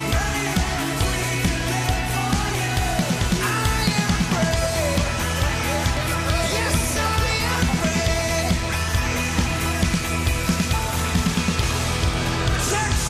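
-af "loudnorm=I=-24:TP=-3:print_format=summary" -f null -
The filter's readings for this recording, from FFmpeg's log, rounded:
Input Integrated:    -21.6 LUFS
Input True Peak:      -8.0 dBTP
Input LRA:             0.6 LU
Input Threshold:     -31.6 LUFS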